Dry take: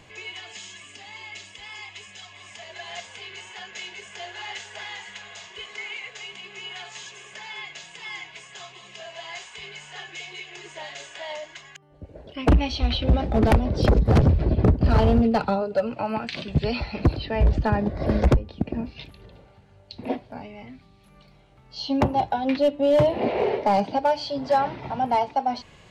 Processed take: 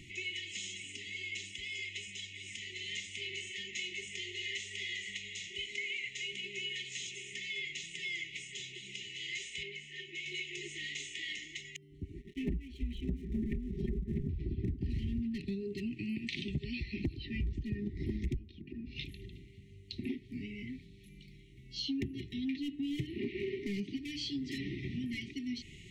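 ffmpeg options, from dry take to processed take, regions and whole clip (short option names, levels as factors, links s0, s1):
-filter_complex "[0:a]asettb=1/sr,asplit=3[s0][s1][s2];[s0]atrim=end=9.634[s3];[s1]atrim=start=9.63:end=10.26,asetpts=PTS-STARTPTS,afade=t=in:d=0.004:c=qsin,afade=t=out:st=0.626:d=0.004:c=qsin,lowpass=f=1900:p=1,equalizer=f=80:w=1:g=-13.5[s4];[s2]atrim=start=10.256[s5];[s3][s4]acrossfade=d=0.004:c1=hsin:c2=qsin[s6];[s6][s5]acrossfade=d=0.004:c1=qsin:c2=hsin,asettb=1/sr,asplit=3[s7][s8][s9];[s7]atrim=end=12.204[s10];[s8]atrim=start=12.2:end=14.29,asetpts=PTS-STARTPTS,afade=t=in:d=0.004:c=qsin,afade=t=out:st=2.086:d=0.004:c=qsin,lowpass=1500,aecho=1:1:5:0.93,atrim=end_sample=92169,aeval=exprs='sgn(val(0))*max(abs(val(0))-0.0075,0)':c=same[s11];[s9]atrim=start=14.286[s12];[s10][s11]acrossfade=d=0.004:c1=hsin:c2=qsin[s13];[s13][s12]acrossfade=d=0.004:c1=qsin:c2=hsin,asettb=1/sr,asplit=3[s14][s15][s16];[s14]atrim=end=18.514[s17];[s15]atrim=start=18.51:end=18.96,asetpts=PTS-STARTPTS,afade=t=in:d=0.004:c=qsin,afade=t=out:st=0.446:d=0.004:c=qsin,lowpass=4800,acompressor=threshold=0.0126:ratio=10:attack=3.2:release=140:knee=1:detection=peak,bandreject=f=50:t=h:w=6,bandreject=f=100:t=h:w=6,bandreject=f=150:t=h:w=6,bandreject=f=200:t=h:w=6,bandreject=f=250:t=h:w=6,bandreject=f=300:t=h:w=6,bandreject=f=350:t=h:w=6,bandreject=f=400:t=h:w=6,bandreject=f=450:t=h:w=6[s18];[s16]atrim=start=18.956[s19];[s17][s18]acrossfade=d=0.004:c1=hsin:c2=qsin[s20];[s20][s19]acrossfade=d=0.004:c1=qsin:c2=hsin,afftfilt=real='re*(1-between(b*sr/4096,410,1800))':imag='im*(1-between(b*sr/4096,410,1800))':win_size=4096:overlap=0.75,equalizer=f=4700:w=6.1:g=-9,acompressor=threshold=0.0178:ratio=5"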